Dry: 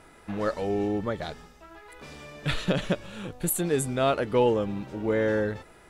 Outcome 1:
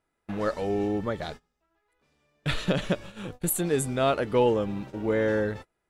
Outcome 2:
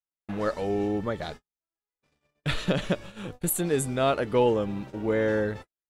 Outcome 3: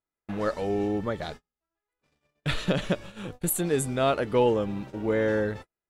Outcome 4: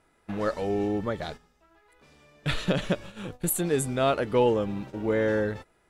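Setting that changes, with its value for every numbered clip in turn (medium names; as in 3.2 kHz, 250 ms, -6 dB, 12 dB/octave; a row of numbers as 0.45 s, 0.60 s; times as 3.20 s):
gate, range: -26 dB, -54 dB, -41 dB, -13 dB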